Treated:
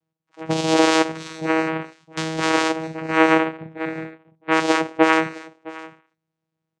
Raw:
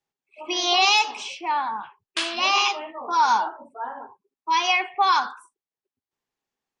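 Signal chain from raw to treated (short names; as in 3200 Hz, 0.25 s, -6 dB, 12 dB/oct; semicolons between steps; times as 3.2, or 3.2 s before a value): low shelf 240 Hz +8 dB; vocoder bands 4, saw 160 Hz; echo 0.662 s -19.5 dB; gain +2.5 dB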